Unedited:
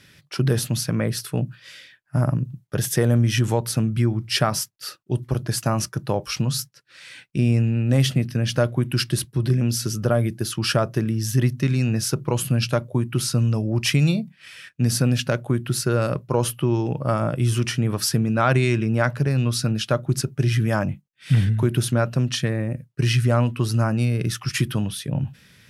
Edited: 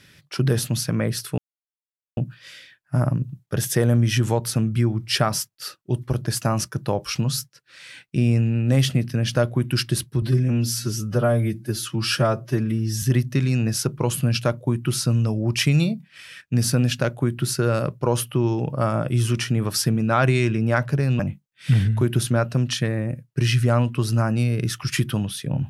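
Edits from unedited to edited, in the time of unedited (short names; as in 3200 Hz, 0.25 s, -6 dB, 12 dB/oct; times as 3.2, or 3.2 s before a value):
1.38 insert silence 0.79 s
9.43–11.3 stretch 1.5×
19.47–20.81 cut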